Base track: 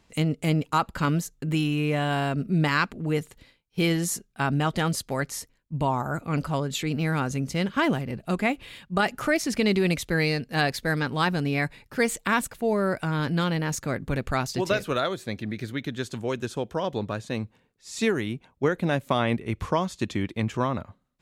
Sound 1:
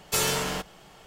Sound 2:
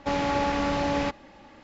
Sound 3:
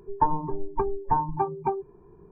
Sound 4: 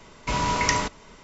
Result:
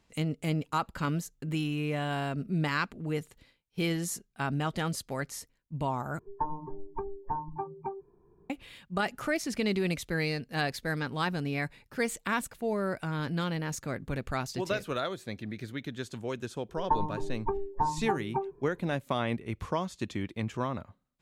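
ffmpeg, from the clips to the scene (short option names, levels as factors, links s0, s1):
-filter_complex "[3:a]asplit=2[s0][s1];[0:a]volume=0.473,asplit=2[s2][s3];[s2]atrim=end=6.194[s4];[s0]atrim=end=2.31,asetpts=PTS-STARTPTS,volume=0.316[s5];[s3]atrim=start=8.496[s6];[s1]atrim=end=2.31,asetpts=PTS-STARTPTS,volume=0.562,afade=t=in:d=0.004:c=hsin,afade=t=out:st=2.306:d=0.004:c=hsin,adelay=16690[s7];[s4][s5]acrossfade=d=0.004:c1=hsin:c2=hsin[s8];[s8][s6]acrossfade=d=0.004:c1=hsin:c2=hsin[s9];[s9][s7]amix=inputs=2:normalize=0"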